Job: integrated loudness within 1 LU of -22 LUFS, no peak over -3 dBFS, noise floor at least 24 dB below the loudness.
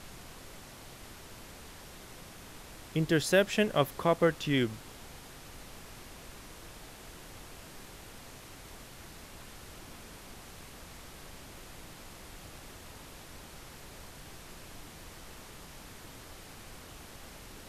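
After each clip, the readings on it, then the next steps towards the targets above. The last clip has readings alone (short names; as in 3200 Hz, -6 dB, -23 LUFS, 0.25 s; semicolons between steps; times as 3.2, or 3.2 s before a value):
noise floor -50 dBFS; noise floor target -53 dBFS; loudness -29.0 LUFS; peak -12.5 dBFS; loudness target -22.0 LUFS
-> noise print and reduce 6 dB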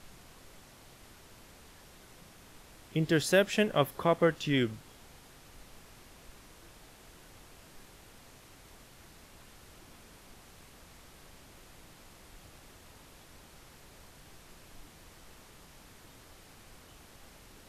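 noise floor -56 dBFS; loudness -28.5 LUFS; peak -12.5 dBFS; loudness target -22.0 LUFS
-> gain +6.5 dB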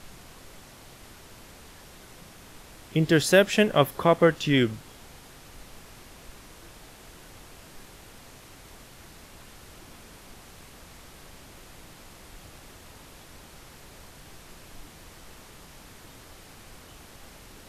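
loudness -22.0 LUFS; peak -6.0 dBFS; noise floor -50 dBFS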